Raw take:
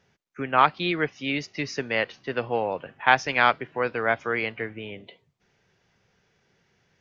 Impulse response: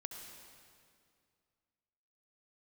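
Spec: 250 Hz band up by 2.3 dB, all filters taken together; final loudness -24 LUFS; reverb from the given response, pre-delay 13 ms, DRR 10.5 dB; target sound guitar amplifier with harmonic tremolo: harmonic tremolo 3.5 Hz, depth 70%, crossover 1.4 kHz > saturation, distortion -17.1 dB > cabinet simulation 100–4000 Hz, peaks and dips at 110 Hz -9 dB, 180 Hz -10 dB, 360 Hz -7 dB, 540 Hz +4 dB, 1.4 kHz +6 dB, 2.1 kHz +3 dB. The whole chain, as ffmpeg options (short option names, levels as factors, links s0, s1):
-filter_complex "[0:a]equalizer=f=250:t=o:g=7,asplit=2[s0][s1];[1:a]atrim=start_sample=2205,adelay=13[s2];[s1][s2]afir=irnorm=-1:irlink=0,volume=0.398[s3];[s0][s3]amix=inputs=2:normalize=0,acrossover=split=1400[s4][s5];[s4]aeval=exprs='val(0)*(1-0.7/2+0.7/2*cos(2*PI*3.5*n/s))':c=same[s6];[s5]aeval=exprs='val(0)*(1-0.7/2-0.7/2*cos(2*PI*3.5*n/s))':c=same[s7];[s6][s7]amix=inputs=2:normalize=0,asoftclip=threshold=0.299,highpass=100,equalizer=f=110:t=q:w=4:g=-9,equalizer=f=180:t=q:w=4:g=-10,equalizer=f=360:t=q:w=4:g=-7,equalizer=f=540:t=q:w=4:g=4,equalizer=f=1400:t=q:w=4:g=6,equalizer=f=2100:t=q:w=4:g=3,lowpass=f=4000:w=0.5412,lowpass=f=4000:w=1.3066,volume=1.33"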